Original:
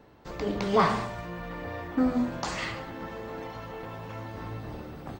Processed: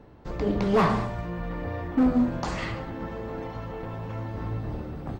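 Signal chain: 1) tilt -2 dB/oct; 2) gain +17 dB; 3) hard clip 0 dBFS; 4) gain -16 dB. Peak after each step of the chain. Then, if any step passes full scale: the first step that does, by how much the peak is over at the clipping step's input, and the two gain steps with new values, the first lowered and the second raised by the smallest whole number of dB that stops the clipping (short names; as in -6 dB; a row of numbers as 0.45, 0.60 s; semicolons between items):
-8.5, +8.5, 0.0, -16.0 dBFS; step 2, 8.5 dB; step 2 +8 dB, step 4 -7 dB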